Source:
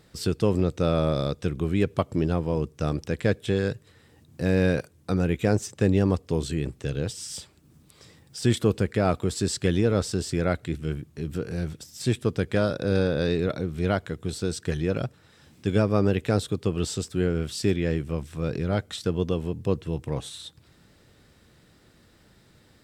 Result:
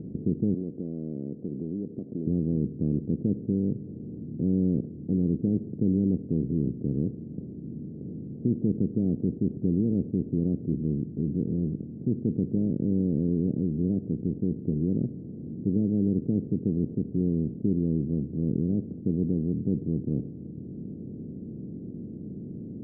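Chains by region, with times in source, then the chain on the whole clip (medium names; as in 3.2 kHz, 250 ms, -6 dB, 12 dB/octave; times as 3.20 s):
0.54–2.27 s: high-pass 480 Hz + compression 2:1, threshold -38 dBFS
whole clip: spectral levelling over time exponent 0.4; inverse Chebyshev low-pass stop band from 1.8 kHz, stop band 80 dB; resonant low shelf 130 Hz -6.5 dB, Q 1.5; trim -3 dB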